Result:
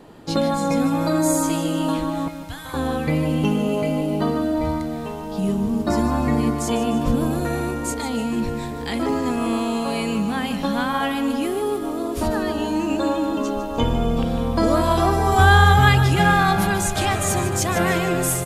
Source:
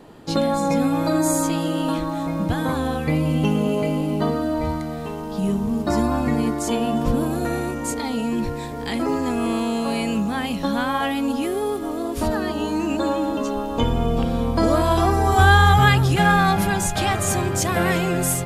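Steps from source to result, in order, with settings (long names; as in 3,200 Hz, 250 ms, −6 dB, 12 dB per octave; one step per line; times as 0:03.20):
0:02.28–0:02.74: guitar amp tone stack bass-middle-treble 10-0-10
repeating echo 151 ms, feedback 52%, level −11 dB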